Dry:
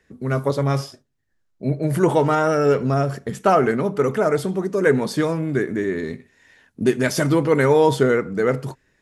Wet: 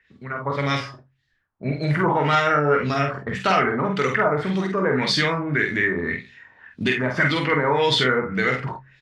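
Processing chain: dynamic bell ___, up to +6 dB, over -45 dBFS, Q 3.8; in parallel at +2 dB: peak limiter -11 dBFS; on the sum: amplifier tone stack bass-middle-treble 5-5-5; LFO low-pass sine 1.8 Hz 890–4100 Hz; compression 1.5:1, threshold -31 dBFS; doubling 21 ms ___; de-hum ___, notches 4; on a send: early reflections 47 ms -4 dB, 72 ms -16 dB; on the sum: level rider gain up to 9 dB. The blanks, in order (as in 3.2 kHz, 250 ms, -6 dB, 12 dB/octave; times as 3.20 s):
2 kHz, -14 dB, 66.52 Hz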